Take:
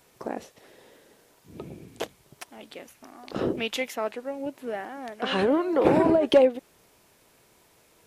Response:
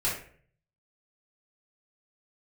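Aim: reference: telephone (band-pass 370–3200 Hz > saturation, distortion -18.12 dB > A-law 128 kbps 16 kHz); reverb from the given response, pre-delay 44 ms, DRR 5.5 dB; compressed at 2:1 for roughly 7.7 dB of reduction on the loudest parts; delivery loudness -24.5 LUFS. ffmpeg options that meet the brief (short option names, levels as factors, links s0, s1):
-filter_complex "[0:a]acompressor=threshold=0.0447:ratio=2,asplit=2[s0][s1];[1:a]atrim=start_sample=2205,adelay=44[s2];[s1][s2]afir=irnorm=-1:irlink=0,volume=0.2[s3];[s0][s3]amix=inputs=2:normalize=0,highpass=370,lowpass=3200,asoftclip=threshold=0.0944,volume=2.66" -ar 16000 -c:a pcm_alaw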